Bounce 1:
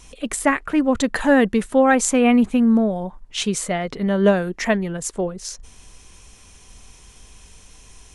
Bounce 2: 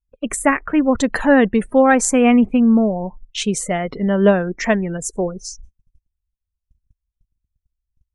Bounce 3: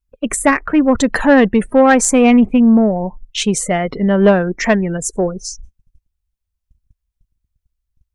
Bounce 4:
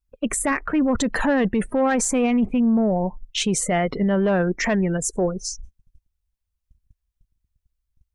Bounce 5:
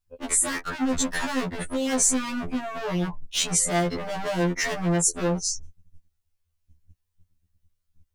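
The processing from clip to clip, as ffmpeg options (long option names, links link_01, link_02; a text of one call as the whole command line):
ffmpeg -i in.wav -af "afftdn=noise_reduction=30:noise_floor=-36,agate=range=-32dB:threshold=-40dB:ratio=16:detection=peak,equalizer=frequency=3700:width=1.5:gain=-2.5,volume=2.5dB" out.wav
ffmpeg -i in.wav -af "acontrast=38,volume=-1dB" out.wav
ffmpeg -i in.wav -af "alimiter=limit=-11.5dB:level=0:latency=1:release=17,volume=-2.5dB" out.wav
ffmpeg -i in.wav -filter_complex "[0:a]acrossover=split=4800[link_01][link_02];[link_01]asoftclip=type=hard:threshold=-30dB[link_03];[link_03][link_02]amix=inputs=2:normalize=0,afftfilt=real='re*2*eq(mod(b,4),0)':imag='im*2*eq(mod(b,4),0)':win_size=2048:overlap=0.75,volume=6dB" out.wav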